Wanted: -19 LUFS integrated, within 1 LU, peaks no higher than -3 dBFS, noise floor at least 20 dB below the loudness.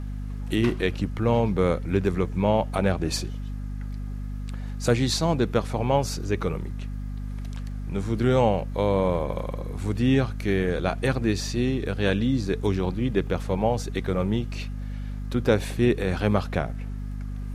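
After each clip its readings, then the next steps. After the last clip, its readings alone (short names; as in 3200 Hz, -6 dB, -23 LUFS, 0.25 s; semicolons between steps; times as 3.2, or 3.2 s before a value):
ticks 34/s; hum 50 Hz; harmonics up to 250 Hz; hum level -29 dBFS; loudness -26.0 LUFS; peak -6.5 dBFS; loudness target -19.0 LUFS
-> de-click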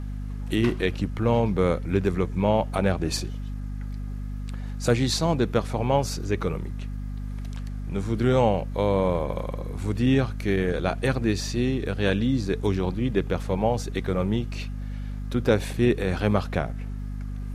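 ticks 0.11/s; hum 50 Hz; harmonics up to 250 Hz; hum level -29 dBFS
-> de-hum 50 Hz, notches 5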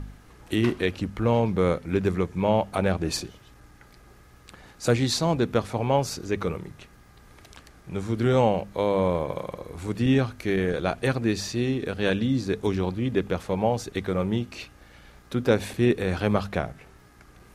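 hum none; loudness -26.0 LUFS; peak -7.0 dBFS; loudness target -19.0 LUFS
-> gain +7 dB; limiter -3 dBFS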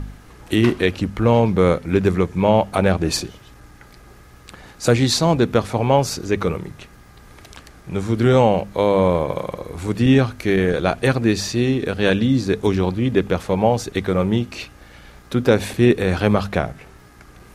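loudness -19.0 LUFS; peak -3.0 dBFS; noise floor -46 dBFS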